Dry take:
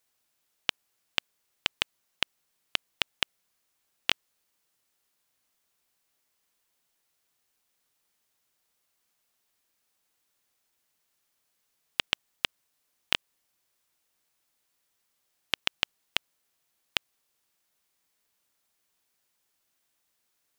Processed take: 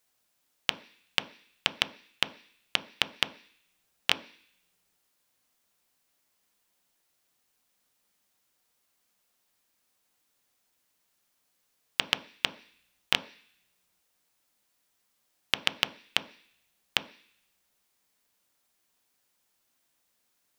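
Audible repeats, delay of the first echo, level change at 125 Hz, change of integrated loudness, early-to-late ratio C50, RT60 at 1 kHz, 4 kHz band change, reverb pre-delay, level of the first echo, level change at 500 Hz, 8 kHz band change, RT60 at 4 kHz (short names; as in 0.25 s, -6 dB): none, none, +2.0 dB, +1.5 dB, 17.0 dB, 0.50 s, +1.5 dB, 3 ms, none, +2.5 dB, +1.5 dB, 0.90 s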